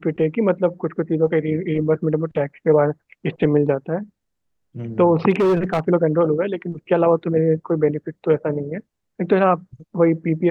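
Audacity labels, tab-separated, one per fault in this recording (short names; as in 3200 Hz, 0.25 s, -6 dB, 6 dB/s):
5.300000	5.800000	clipped -13.5 dBFS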